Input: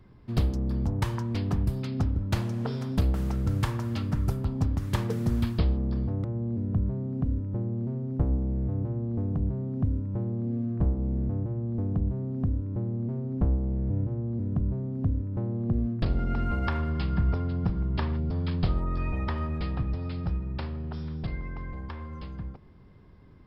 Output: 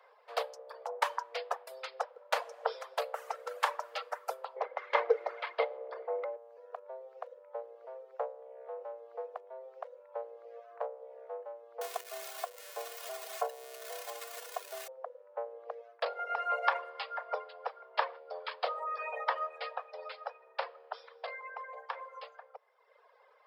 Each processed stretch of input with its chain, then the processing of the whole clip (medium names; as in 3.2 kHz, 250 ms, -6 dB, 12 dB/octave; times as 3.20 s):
4.56–6.36 s: waveshaping leveller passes 1 + distance through air 270 m + small resonant body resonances 280/2100 Hz, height 16 dB
11.81–14.88 s: zero-crossing glitches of -25 dBFS + comb 2.8 ms, depth 92%
whole clip: reverb removal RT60 1.3 s; steep high-pass 470 Hz 96 dB/octave; treble shelf 2.4 kHz -11 dB; trim +8.5 dB